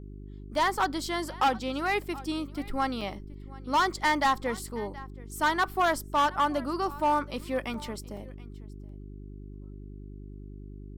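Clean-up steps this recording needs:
clipped peaks rebuilt −19 dBFS
hum removal 50 Hz, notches 8
repair the gap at 0:03.01/0:04.57/0:05.31/0:05.64/0:06.91/0:07.74/0:08.17/0:08.89, 2.8 ms
echo removal 724 ms −22 dB

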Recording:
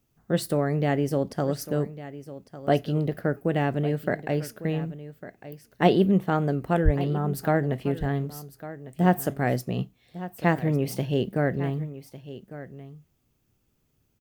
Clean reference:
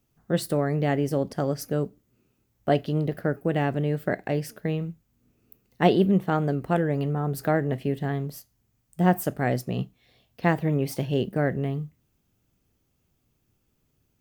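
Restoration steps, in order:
0:06.84–0:06.96: high-pass filter 140 Hz 24 dB per octave
echo removal 1,152 ms −15 dB

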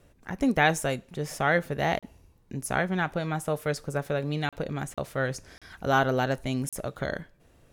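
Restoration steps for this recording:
repair the gap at 0:01.99/0:04.49/0:04.94/0:05.58/0:06.69, 36 ms

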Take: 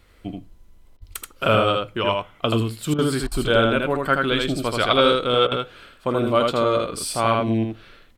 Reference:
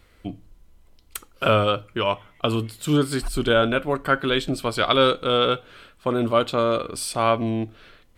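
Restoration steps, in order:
high-pass at the plosives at 0:00.99
repair the gap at 0:00.97/0:02.94/0:03.27/0:05.47, 44 ms
echo removal 80 ms −3.5 dB

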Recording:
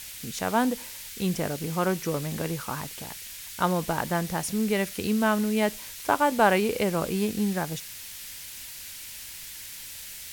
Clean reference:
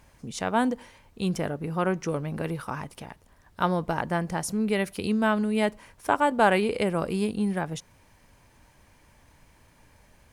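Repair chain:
noise reduction from a noise print 18 dB

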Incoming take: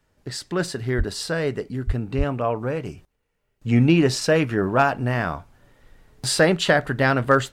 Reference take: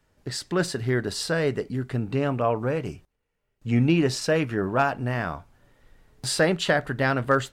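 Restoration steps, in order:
high-pass at the plosives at 0:00.97/0:01.86/0:02.17
level correction −4 dB, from 0:02.97

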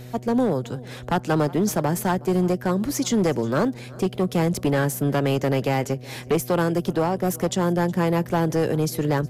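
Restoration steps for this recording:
clipped peaks rebuilt −15 dBFS
hum removal 123.9 Hz, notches 6
echo removal 367 ms −23 dB

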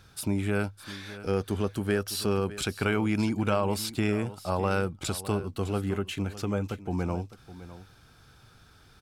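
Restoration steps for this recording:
echo removal 607 ms −15.5 dB

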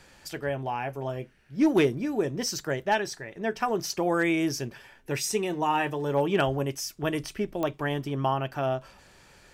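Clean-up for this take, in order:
clipped peaks rebuilt −15 dBFS
click removal

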